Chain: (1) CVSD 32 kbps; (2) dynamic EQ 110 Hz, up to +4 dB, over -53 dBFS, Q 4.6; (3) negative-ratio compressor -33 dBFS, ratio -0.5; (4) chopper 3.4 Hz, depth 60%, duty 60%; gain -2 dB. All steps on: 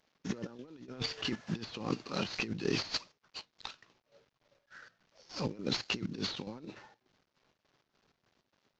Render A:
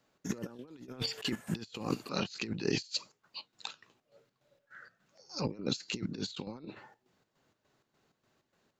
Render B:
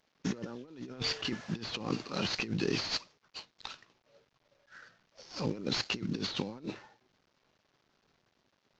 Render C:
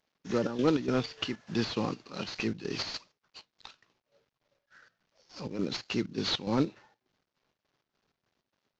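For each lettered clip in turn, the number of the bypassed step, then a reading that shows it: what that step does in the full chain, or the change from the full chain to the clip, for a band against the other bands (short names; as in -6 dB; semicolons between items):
1, 8 kHz band +3.0 dB; 4, momentary loudness spread change -2 LU; 3, momentary loudness spread change -5 LU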